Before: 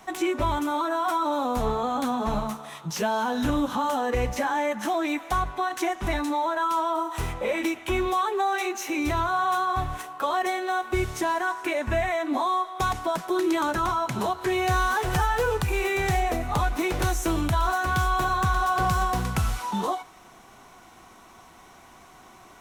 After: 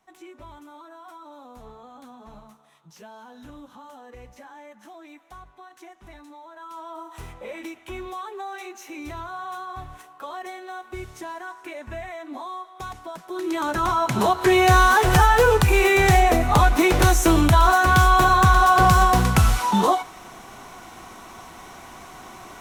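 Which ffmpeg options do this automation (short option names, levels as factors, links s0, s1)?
-af "volume=2.66,afade=t=in:st=6.49:d=0.65:silence=0.334965,afade=t=in:st=13.26:d=0.39:silence=0.334965,afade=t=in:st=13.65:d=0.82:silence=0.375837"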